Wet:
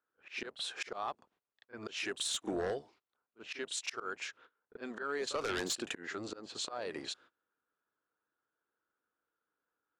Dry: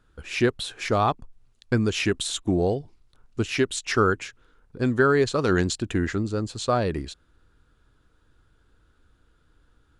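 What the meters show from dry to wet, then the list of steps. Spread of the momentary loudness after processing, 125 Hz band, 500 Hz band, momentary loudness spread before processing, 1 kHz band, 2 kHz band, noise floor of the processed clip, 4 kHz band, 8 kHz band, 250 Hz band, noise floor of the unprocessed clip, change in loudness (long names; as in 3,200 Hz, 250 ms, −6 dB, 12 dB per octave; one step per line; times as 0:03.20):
11 LU, −28.5 dB, −16.0 dB, 10 LU, −15.0 dB, −12.5 dB, below −85 dBFS, −7.5 dB, −7.0 dB, −19.0 dB, −64 dBFS, −14.5 dB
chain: sub-octave generator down 1 octave, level −4 dB
high-pass filter 520 Hz 12 dB per octave
noise gate −57 dBFS, range −24 dB
volume swells 610 ms
sine wavefolder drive 11 dB, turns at −11.5 dBFS
downward compressor 2.5 to 1, threshold −31 dBFS, peak gain reduction 11 dB
low-pass that shuts in the quiet parts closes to 1,900 Hz, open at −26 dBFS
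echo ahead of the sound 35 ms −14 dB
level −7.5 dB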